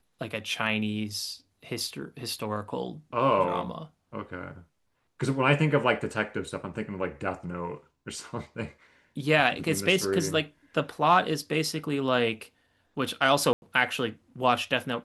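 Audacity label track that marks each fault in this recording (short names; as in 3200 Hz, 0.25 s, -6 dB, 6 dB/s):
13.530000	13.620000	gap 91 ms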